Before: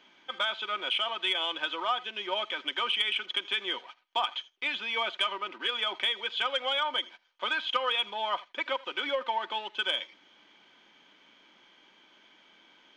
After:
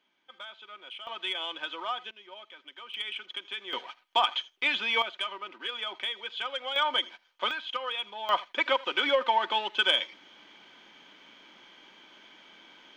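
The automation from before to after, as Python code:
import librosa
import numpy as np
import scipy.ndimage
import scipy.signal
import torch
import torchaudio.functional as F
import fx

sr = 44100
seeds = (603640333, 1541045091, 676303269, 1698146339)

y = fx.gain(x, sr, db=fx.steps((0.0, -14.0), (1.07, -4.0), (2.11, -15.5), (2.94, -7.0), (3.73, 4.5), (5.02, -4.5), (6.76, 3.0), (7.51, -5.0), (8.29, 5.5)))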